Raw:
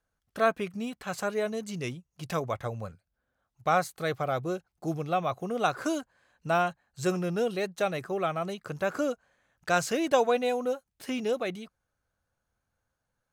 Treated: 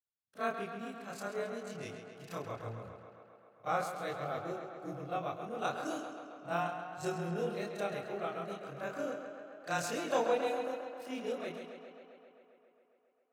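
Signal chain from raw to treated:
every overlapping window played backwards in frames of 70 ms
high-pass filter 90 Hz
on a send: tape delay 134 ms, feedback 86%, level −6.5 dB, low-pass 5,900 Hz
on the sum: multiband upward and downward expander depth 40%
level −6.5 dB

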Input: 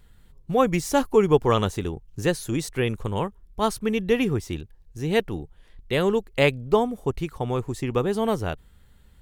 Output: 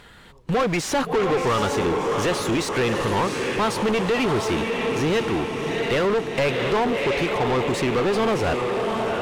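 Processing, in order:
in parallel at −11 dB: bit-depth reduction 6 bits, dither none
on the sum: downward compressor 2.5 to 1, threshold −24 dBFS, peak gain reduction 9.5 dB
feedback delay with all-pass diffusion 705 ms, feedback 52%, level −10 dB
mid-hump overdrive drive 30 dB, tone 3,100 Hz, clips at −11 dBFS
high-shelf EQ 11,000 Hz −9 dB
level −2.5 dB

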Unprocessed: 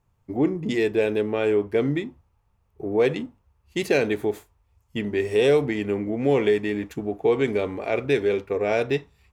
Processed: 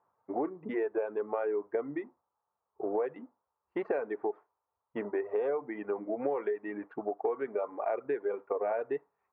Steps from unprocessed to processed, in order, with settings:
high-pass filter 630 Hz 12 dB per octave
reverb reduction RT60 1.4 s
low-pass filter 1,300 Hz 24 dB per octave
downward compressor 6 to 1, threshold −36 dBFS, peak gain reduction 13.5 dB
level +7 dB

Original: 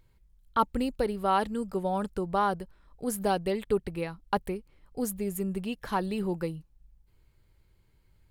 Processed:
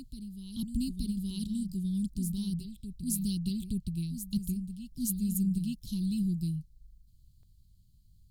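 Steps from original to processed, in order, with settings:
inverse Chebyshev band-stop filter 470–1,900 Hz, stop band 50 dB
dynamic equaliser 150 Hz, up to +3 dB, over −47 dBFS, Q 2.4
backwards echo 872 ms −9 dB
level +3 dB

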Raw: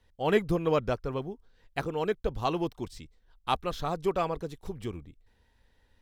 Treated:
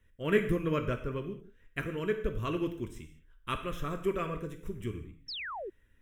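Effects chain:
phaser with its sweep stopped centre 1,900 Hz, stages 4
reverb whose tail is shaped and stops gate 230 ms falling, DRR 5.5 dB
sound drawn into the spectrogram fall, 0:05.28–0:05.70, 340–5,700 Hz −39 dBFS

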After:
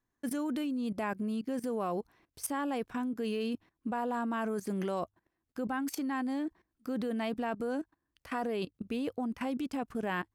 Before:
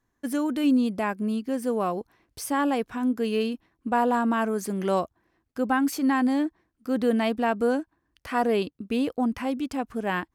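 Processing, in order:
output level in coarse steps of 17 dB
mains-hum notches 50/100 Hz
level +1 dB

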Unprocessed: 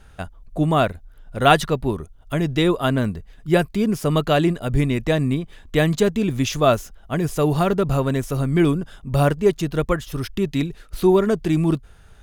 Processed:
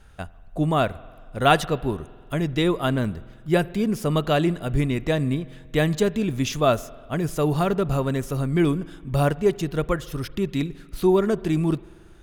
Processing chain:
spring reverb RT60 1.8 s, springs 46 ms, chirp 35 ms, DRR 19.5 dB
level −3 dB

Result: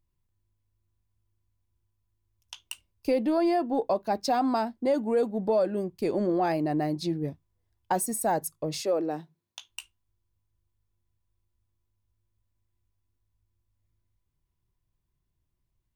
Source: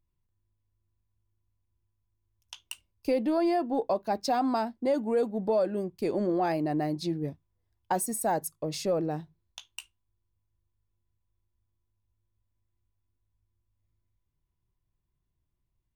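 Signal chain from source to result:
0:08.80–0:09.68: high-pass filter 310 Hz → 100 Hz 24 dB per octave
level +1.5 dB

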